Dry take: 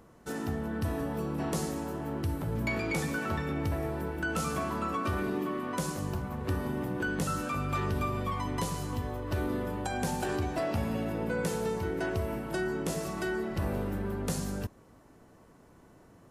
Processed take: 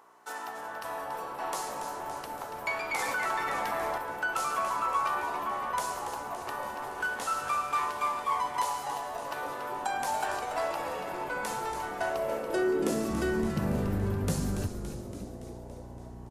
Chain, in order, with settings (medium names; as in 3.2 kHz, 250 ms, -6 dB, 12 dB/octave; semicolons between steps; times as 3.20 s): 6.82–8.57 s: CVSD coder 64 kbps; mains buzz 60 Hz, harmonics 7, -48 dBFS -4 dB/octave; high-pass sweep 890 Hz -> 76 Hz, 11.86–14.34 s; frequency-shifting echo 283 ms, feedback 63%, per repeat -150 Hz, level -8.5 dB; 2.99–3.98 s: level flattener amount 70%